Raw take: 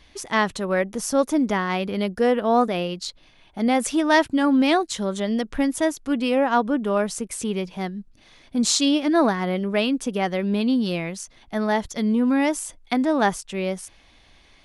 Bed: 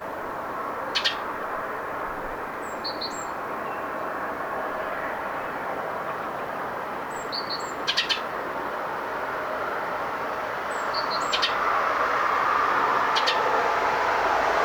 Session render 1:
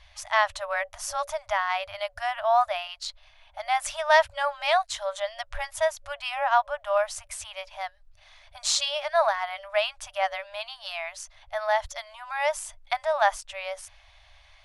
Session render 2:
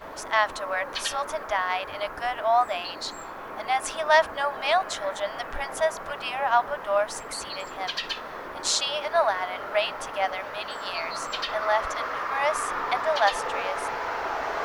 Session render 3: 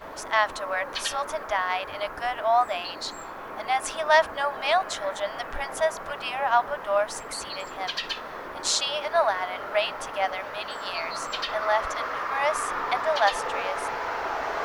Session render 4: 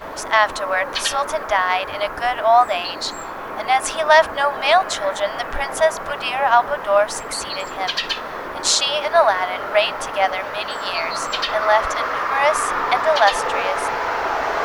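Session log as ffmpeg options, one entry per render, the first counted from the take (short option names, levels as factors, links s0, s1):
-af "afftfilt=real='re*(1-between(b*sr/4096,100,570))':imag='im*(1-between(b*sr/4096,100,570))':win_size=4096:overlap=0.75,highshelf=f=5900:g=-7.5"
-filter_complex "[1:a]volume=0.447[s0];[0:a][s0]amix=inputs=2:normalize=0"
-af anull
-af "volume=2.51,alimiter=limit=0.794:level=0:latency=1"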